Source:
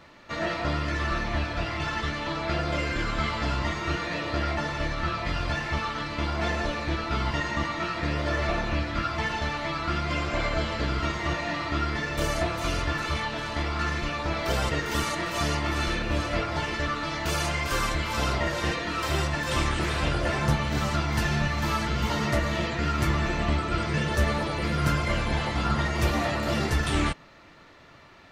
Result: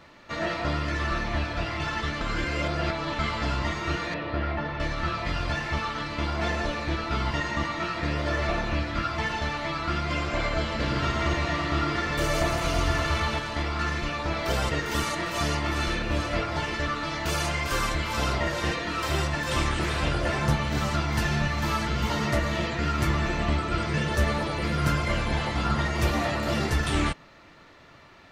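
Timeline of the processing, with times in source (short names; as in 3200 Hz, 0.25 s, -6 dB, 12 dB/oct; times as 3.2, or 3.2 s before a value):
2.21–3.19 reverse
4.14–4.8 air absorption 290 m
10.63–13.39 split-band echo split 710 Hz, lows 0.115 s, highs 0.162 s, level -3 dB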